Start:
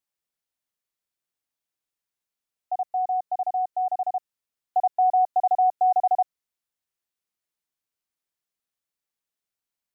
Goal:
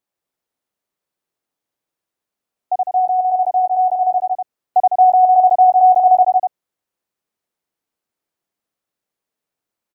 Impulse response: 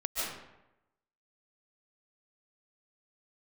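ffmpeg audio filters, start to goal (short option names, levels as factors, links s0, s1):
-filter_complex "[0:a]equalizer=f=400:w=0.31:g=10.5,asplit=2[s0][s1];[s1]aecho=0:1:154.5|244.9:0.501|0.501[s2];[s0][s2]amix=inputs=2:normalize=0"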